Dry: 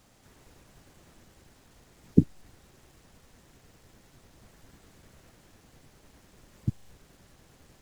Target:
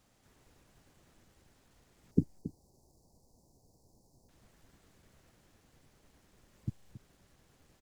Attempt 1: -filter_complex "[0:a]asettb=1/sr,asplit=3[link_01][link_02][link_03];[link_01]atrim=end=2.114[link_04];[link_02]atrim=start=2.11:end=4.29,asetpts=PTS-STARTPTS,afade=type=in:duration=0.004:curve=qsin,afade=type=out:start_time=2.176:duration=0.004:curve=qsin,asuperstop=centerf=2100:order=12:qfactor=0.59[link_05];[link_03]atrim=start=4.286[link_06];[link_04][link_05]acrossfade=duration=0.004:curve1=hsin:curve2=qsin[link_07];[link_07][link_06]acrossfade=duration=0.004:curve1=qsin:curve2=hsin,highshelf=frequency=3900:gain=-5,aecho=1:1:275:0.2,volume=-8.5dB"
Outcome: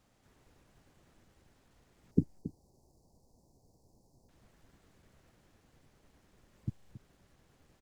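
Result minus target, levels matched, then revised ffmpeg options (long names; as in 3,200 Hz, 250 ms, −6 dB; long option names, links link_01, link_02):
8,000 Hz band −4.0 dB
-filter_complex "[0:a]asettb=1/sr,asplit=3[link_01][link_02][link_03];[link_01]atrim=end=2.114[link_04];[link_02]atrim=start=2.11:end=4.29,asetpts=PTS-STARTPTS,afade=type=in:duration=0.004:curve=qsin,afade=type=out:start_time=2.176:duration=0.004:curve=qsin,asuperstop=centerf=2100:order=12:qfactor=0.59[link_05];[link_03]atrim=start=4.286[link_06];[link_04][link_05]acrossfade=duration=0.004:curve1=hsin:curve2=qsin[link_07];[link_07][link_06]acrossfade=duration=0.004:curve1=qsin:curve2=hsin,aecho=1:1:275:0.2,volume=-8.5dB"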